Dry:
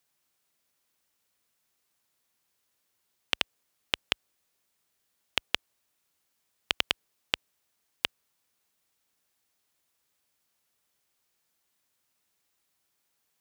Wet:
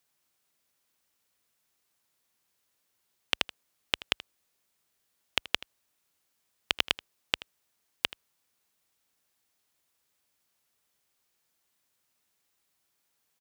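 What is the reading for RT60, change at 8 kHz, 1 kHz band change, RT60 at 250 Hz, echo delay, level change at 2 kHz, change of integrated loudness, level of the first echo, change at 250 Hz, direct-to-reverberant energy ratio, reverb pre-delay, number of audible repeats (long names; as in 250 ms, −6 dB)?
no reverb audible, 0.0 dB, 0.0 dB, no reverb audible, 80 ms, 0.0 dB, 0.0 dB, −18.0 dB, 0.0 dB, no reverb audible, no reverb audible, 1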